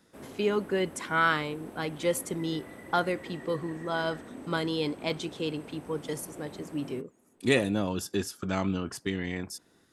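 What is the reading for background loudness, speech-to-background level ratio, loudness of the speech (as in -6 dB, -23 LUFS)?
-46.0 LUFS, 14.5 dB, -31.5 LUFS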